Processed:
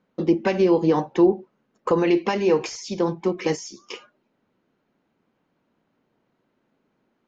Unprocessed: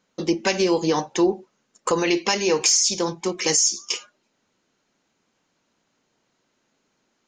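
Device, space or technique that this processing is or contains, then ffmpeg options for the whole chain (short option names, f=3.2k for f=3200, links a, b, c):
phone in a pocket: -af "lowpass=3.7k,equalizer=f=190:t=o:w=2.9:g=4,highshelf=f=2.3k:g=-10"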